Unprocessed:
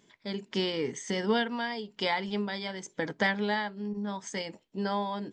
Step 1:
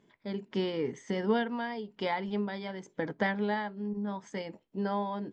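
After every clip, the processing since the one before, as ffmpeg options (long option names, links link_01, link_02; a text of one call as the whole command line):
ffmpeg -i in.wav -af "lowpass=frequency=1300:poles=1" out.wav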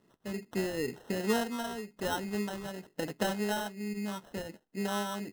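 ffmpeg -i in.wav -af "acrusher=samples=19:mix=1:aa=0.000001,volume=-1.5dB" out.wav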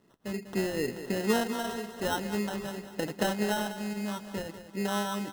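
ffmpeg -i in.wav -af "aecho=1:1:196|392|588|784|980|1176:0.266|0.149|0.0834|0.0467|0.0262|0.0147,volume=2.5dB" out.wav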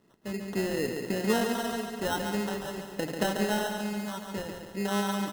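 ffmpeg -i in.wav -af "aecho=1:1:140|280|420|560|700:0.501|0.221|0.097|0.0427|0.0188" out.wav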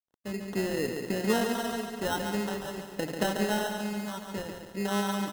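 ffmpeg -i in.wav -af "aeval=exprs='sgn(val(0))*max(abs(val(0))-0.00133,0)':channel_layout=same" out.wav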